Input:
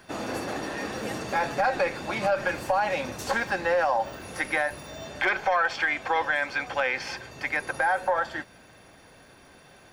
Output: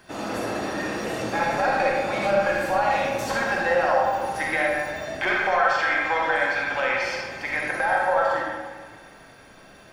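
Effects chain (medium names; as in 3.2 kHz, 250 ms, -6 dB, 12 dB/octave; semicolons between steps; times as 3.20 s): feedback echo behind a high-pass 175 ms, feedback 73%, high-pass 1.8 kHz, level -17 dB; algorithmic reverb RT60 1.5 s, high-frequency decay 0.5×, pre-delay 10 ms, DRR -3 dB; trim -1 dB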